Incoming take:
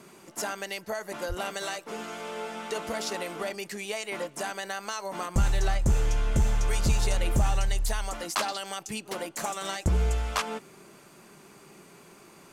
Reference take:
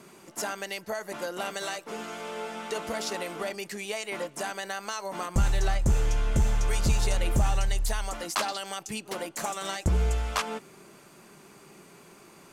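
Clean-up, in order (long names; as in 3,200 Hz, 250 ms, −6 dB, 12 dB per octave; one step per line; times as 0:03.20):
0:01.28–0:01.40: high-pass filter 140 Hz 24 dB per octave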